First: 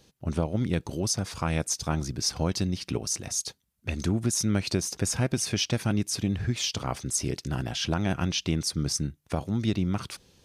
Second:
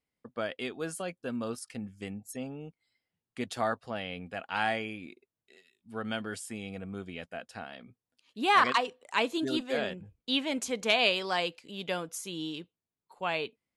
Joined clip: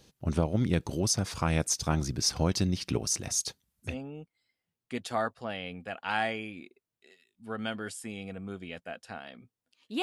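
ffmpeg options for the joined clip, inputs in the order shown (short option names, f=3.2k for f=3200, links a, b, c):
-filter_complex "[0:a]apad=whole_dur=10.02,atrim=end=10.02,atrim=end=3.97,asetpts=PTS-STARTPTS[a];[1:a]atrim=start=2.29:end=8.48,asetpts=PTS-STARTPTS[b];[a][b]acrossfade=d=0.14:c1=tri:c2=tri"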